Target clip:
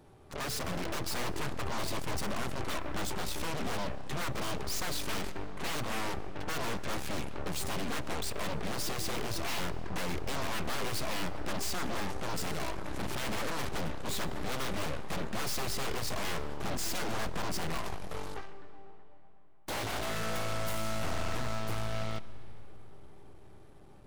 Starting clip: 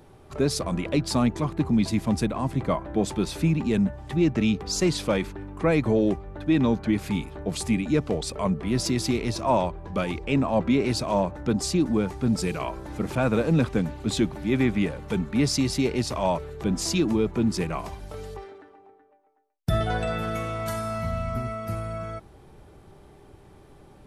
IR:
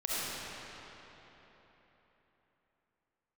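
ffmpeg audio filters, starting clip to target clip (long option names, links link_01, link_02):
-filter_complex "[0:a]aeval=exprs='0.0447*(abs(mod(val(0)/0.0447+3,4)-2)-1)':channel_layout=same,aeval=exprs='0.0473*(cos(1*acos(clip(val(0)/0.0473,-1,1)))-cos(1*PI/2))+0.0106*(cos(4*acos(clip(val(0)/0.0473,-1,1)))-cos(4*PI/2))+0.0133*(cos(7*acos(clip(val(0)/0.0473,-1,1)))-cos(7*PI/2))':channel_layout=same,asplit=2[link_01][link_02];[1:a]atrim=start_sample=2205,adelay=28[link_03];[link_02][link_03]afir=irnorm=-1:irlink=0,volume=-23.5dB[link_04];[link_01][link_04]amix=inputs=2:normalize=0,volume=-4.5dB"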